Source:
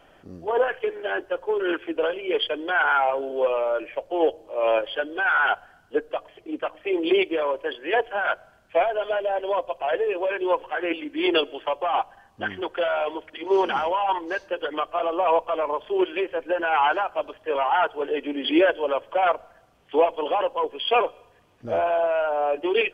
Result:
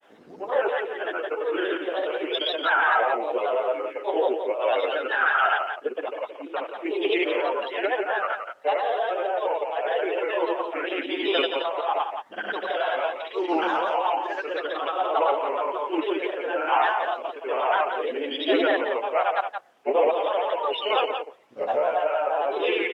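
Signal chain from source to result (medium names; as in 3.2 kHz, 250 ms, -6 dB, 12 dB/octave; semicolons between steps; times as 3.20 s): reverse echo 72 ms -3.5 dB; granulator, grains 26 per s, pitch spread up and down by 3 st; high-pass 340 Hz 12 dB/octave; on a send: delay 173 ms -7.5 dB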